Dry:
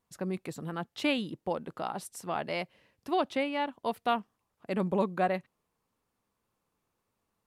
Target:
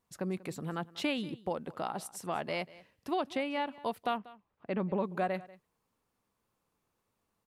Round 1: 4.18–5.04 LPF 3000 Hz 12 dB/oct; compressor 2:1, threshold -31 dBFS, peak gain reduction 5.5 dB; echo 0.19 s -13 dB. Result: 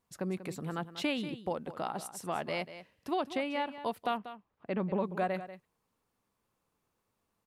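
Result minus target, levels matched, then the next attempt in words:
echo-to-direct +7 dB
4.18–5.04 LPF 3000 Hz 12 dB/oct; compressor 2:1, threshold -31 dBFS, peak gain reduction 5.5 dB; echo 0.19 s -20 dB

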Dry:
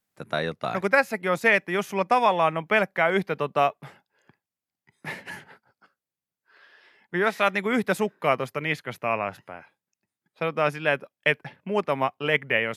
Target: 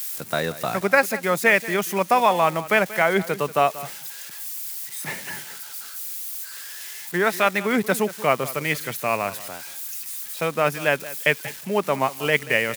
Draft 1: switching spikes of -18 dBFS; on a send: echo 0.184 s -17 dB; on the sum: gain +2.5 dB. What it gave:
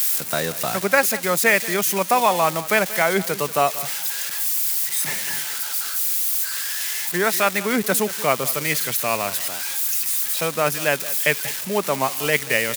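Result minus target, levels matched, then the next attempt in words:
switching spikes: distortion +10 dB
switching spikes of -28.5 dBFS; on a send: echo 0.184 s -17 dB; on the sum: gain +2.5 dB

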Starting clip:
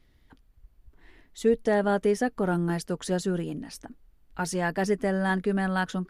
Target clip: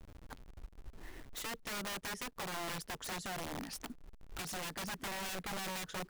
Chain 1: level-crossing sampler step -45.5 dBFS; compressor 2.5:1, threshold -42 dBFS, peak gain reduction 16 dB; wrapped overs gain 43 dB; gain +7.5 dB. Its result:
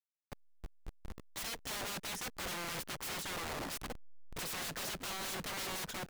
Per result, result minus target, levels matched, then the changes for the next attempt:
level-crossing sampler: distortion +11 dB; compressor: peak gain reduction -6.5 dB
change: level-crossing sampler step -56 dBFS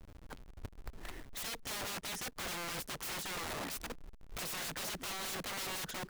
compressor: peak gain reduction -6.5 dB
change: compressor 2.5:1, threshold -52.5 dBFS, peak gain reduction 22.5 dB

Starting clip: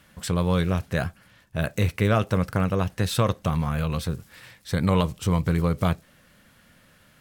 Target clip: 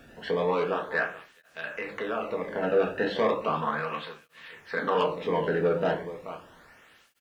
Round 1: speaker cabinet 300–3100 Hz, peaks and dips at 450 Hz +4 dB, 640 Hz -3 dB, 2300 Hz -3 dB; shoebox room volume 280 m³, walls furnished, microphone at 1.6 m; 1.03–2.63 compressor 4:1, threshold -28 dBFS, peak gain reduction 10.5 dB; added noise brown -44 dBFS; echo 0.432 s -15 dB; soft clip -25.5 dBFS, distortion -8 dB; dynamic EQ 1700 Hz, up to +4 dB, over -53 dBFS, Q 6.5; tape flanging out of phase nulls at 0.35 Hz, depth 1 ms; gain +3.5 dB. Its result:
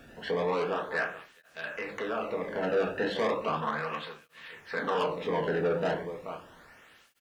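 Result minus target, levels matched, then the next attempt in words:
soft clip: distortion +6 dB
speaker cabinet 300–3100 Hz, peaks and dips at 450 Hz +4 dB, 640 Hz -3 dB, 2300 Hz -3 dB; shoebox room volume 280 m³, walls furnished, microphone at 1.6 m; 1.03–2.63 compressor 4:1, threshold -28 dBFS, peak gain reduction 10.5 dB; added noise brown -44 dBFS; echo 0.432 s -15 dB; soft clip -19 dBFS, distortion -14 dB; dynamic EQ 1700 Hz, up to +4 dB, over -53 dBFS, Q 6.5; tape flanging out of phase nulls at 0.35 Hz, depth 1 ms; gain +3.5 dB

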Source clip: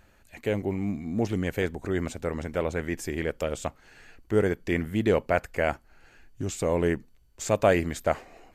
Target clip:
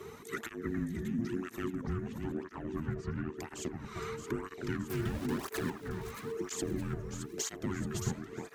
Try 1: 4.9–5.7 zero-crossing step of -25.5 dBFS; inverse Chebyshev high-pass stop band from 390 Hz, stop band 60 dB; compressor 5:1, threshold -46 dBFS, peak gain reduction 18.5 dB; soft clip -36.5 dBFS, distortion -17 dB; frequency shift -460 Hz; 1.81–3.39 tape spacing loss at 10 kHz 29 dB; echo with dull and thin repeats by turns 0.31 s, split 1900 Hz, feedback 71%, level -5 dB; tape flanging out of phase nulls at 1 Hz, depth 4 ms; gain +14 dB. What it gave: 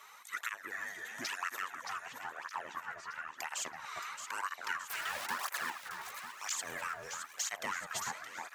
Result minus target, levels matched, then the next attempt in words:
500 Hz band -11.0 dB
4.9–5.7 zero-crossing step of -25.5 dBFS; compressor 5:1, threshold -46 dBFS, peak gain reduction 26.5 dB; soft clip -36.5 dBFS, distortion -20 dB; frequency shift -460 Hz; 1.81–3.39 tape spacing loss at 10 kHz 29 dB; echo with dull and thin repeats by turns 0.31 s, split 1900 Hz, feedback 71%, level -5 dB; tape flanging out of phase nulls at 1 Hz, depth 4 ms; gain +14 dB

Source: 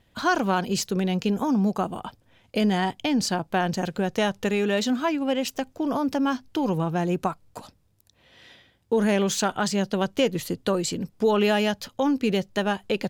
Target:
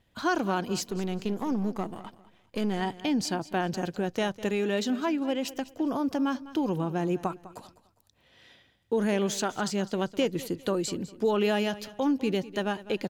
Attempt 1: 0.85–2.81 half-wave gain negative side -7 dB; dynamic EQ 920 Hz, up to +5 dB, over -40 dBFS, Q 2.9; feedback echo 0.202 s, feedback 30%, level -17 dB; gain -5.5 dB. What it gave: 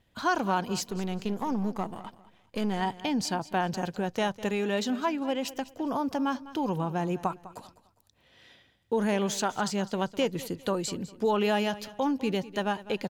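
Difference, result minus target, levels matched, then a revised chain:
1000 Hz band +3.5 dB
0.85–2.81 half-wave gain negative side -7 dB; dynamic EQ 330 Hz, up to +5 dB, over -40 dBFS, Q 2.9; feedback echo 0.202 s, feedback 30%, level -17 dB; gain -5.5 dB

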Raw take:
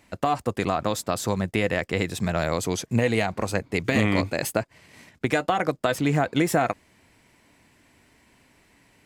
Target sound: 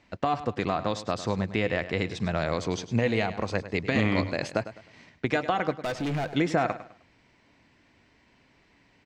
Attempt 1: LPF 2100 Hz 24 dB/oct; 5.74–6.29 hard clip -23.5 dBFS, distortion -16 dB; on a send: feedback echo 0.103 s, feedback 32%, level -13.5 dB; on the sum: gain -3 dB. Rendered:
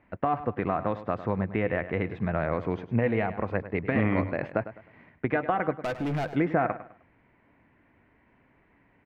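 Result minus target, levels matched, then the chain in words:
8000 Hz band -18.5 dB
LPF 5700 Hz 24 dB/oct; 5.74–6.29 hard clip -23.5 dBFS, distortion -15 dB; on a send: feedback echo 0.103 s, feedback 32%, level -13.5 dB; on the sum: gain -3 dB

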